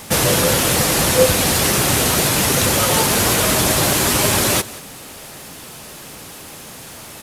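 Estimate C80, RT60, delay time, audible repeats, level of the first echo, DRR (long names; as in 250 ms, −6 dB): no reverb audible, no reverb audible, 181 ms, 1, −19.0 dB, no reverb audible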